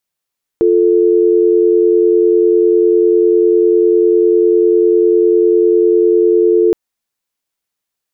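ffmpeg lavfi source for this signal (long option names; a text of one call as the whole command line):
ffmpeg -f lavfi -i "aevalsrc='0.316*(sin(2*PI*350*t)+sin(2*PI*440*t))':duration=6.12:sample_rate=44100" out.wav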